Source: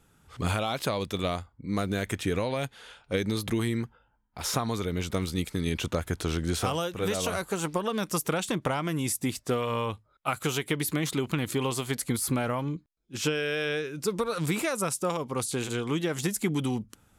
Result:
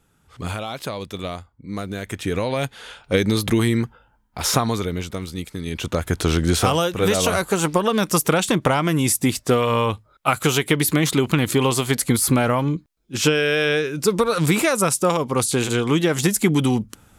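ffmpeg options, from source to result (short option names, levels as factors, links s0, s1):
-af "volume=9.44,afade=t=in:st=2.04:d=0.83:silence=0.334965,afade=t=out:st=4.56:d=0.58:silence=0.334965,afade=t=in:st=5.67:d=0.59:silence=0.316228"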